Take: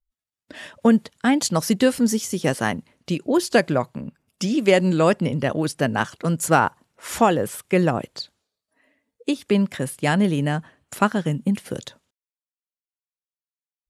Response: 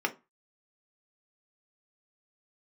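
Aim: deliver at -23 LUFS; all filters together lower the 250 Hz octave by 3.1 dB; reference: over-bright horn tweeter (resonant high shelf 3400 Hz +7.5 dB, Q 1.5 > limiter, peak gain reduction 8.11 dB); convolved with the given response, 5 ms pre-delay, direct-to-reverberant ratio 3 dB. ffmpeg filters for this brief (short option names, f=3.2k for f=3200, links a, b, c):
-filter_complex "[0:a]equalizer=f=250:t=o:g=-4,asplit=2[a][b];[1:a]atrim=start_sample=2205,adelay=5[c];[b][c]afir=irnorm=-1:irlink=0,volume=-11.5dB[d];[a][d]amix=inputs=2:normalize=0,highshelf=f=3.4k:t=q:w=1.5:g=7.5,alimiter=limit=-10dB:level=0:latency=1"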